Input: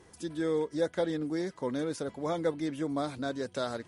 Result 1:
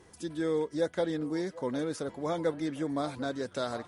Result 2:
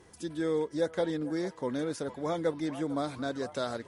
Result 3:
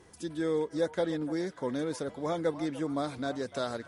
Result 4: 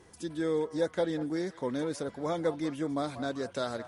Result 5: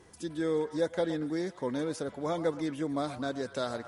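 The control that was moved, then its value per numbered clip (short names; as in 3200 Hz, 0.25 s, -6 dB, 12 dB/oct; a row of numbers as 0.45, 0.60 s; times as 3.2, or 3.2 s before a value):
delay with a stepping band-pass, time: 0.752, 0.449, 0.295, 0.19, 0.116 s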